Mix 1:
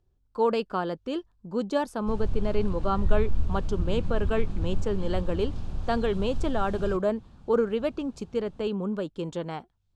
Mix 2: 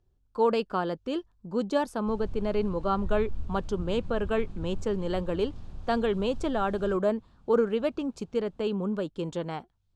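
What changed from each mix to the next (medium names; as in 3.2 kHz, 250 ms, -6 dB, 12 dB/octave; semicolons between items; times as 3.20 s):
background -9.0 dB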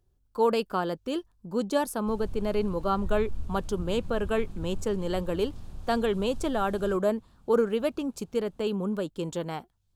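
master: remove distance through air 84 m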